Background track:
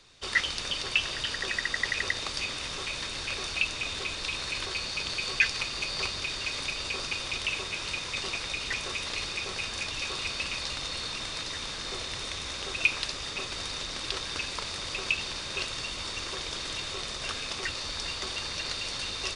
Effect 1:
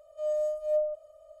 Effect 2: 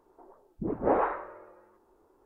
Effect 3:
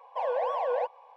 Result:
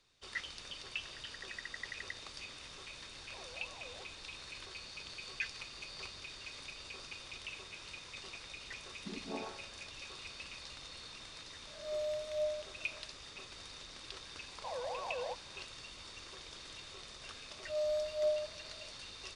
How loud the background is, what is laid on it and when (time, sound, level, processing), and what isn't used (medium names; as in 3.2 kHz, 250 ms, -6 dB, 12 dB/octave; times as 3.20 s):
background track -15 dB
3.18 s: add 3 -17.5 dB + compression 3:1, threshold -37 dBFS
8.43 s: add 2 -16 dB + vocoder on a held chord minor triad, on F#3
11.67 s: add 1 -8.5 dB + reverse spectral sustain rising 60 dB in 0.54 s
14.48 s: add 3 -12 dB
17.51 s: add 1 -5.5 dB